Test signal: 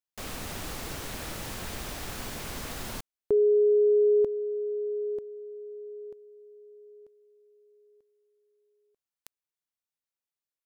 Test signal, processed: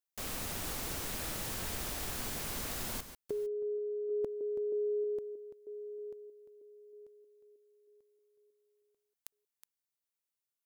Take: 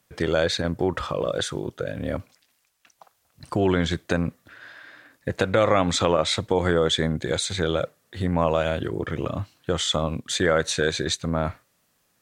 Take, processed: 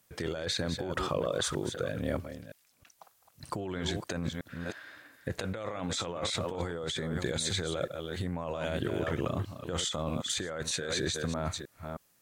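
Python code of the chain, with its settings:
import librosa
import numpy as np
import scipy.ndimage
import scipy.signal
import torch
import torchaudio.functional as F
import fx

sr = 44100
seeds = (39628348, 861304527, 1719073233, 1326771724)

y = fx.reverse_delay(x, sr, ms=315, wet_db=-11.0)
y = fx.high_shelf(y, sr, hz=6800.0, db=7.5)
y = fx.over_compress(y, sr, threshold_db=-26.0, ratio=-1.0)
y = y * 10.0 ** (-7.0 / 20.0)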